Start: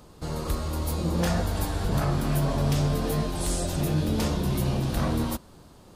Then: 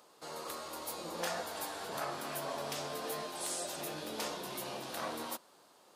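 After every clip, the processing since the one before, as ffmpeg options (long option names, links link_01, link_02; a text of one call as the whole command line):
ffmpeg -i in.wav -af "highpass=540,volume=-5.5dB" out.wav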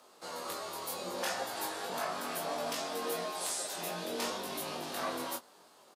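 ffmpeg -i in.wav -filter_complex "[0:a]asplit=2[link_01][link_02];[link_02]adelay=18,volume=-10dB[link_03];[link_01][link_03]amix=inputs=2:normalize=0,afreqshift=21,flanger=delay=20:depth=2.9:speed=0.41,volume=5.5dB" out.wav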